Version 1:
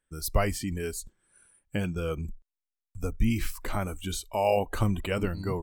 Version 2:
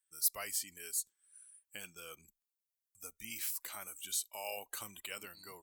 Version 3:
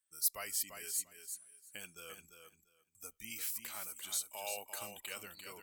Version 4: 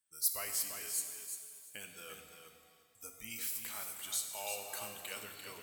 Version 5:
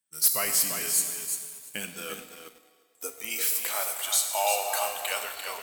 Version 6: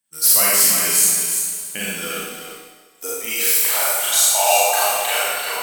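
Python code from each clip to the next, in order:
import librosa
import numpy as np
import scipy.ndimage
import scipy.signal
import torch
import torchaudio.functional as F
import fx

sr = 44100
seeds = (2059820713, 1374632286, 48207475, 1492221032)

y1 = np.diff(x, prepend=0.0)
y1 = y1 * 10.0 ** (1.0 / 20.0)
y2 = fx.echo_feedback(y1, sr, ms=345, feedback_pct=17, wet_db=-7.5)
y2 = y2 * 10.0 ** (-1.0 / 20.0)
y3 = fx.rev_shimmer(y2, sr, seeds[0], rt60_s=1.8, semitones=7, shimmer_db=-8, drr_db=5.5)
y4 = fx.filter_sweep_highpass(y3, sr, from_hz=160.0, to_hz=700.0, start_s=1.56, end_s=4.23, q=2.4)
y4 = fx.leveller(y4, sr, passes=2)
y4 = y4 * 10.0 ** (5.0 / 20.0)
y5 = fx.rev_schroeder(y4, sr, rt60_s=0.99, comb_ms=32, drr_db=-5.5)
y5 = y5 * 10.0 ** (4.5 / 20.0)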